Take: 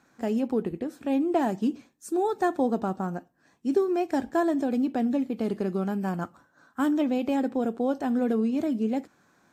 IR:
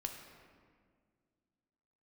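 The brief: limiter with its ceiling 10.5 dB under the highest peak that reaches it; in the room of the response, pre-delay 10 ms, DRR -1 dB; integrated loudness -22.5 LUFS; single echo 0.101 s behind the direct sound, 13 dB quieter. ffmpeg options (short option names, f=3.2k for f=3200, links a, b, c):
-filter_complex "[0:a]alimiter=limit=-23.5dB:level=0:latency=1,aecho=1:1:101:0.224,asplit=2[a][b];[1:a]atrim=start_sample=2205,adelay=10[c];[b][c]afir=irnorm=-1:irlink=0,volume=2dB[d];[a][d]amix=inputs=2:normalize=0,volume=5.5dB"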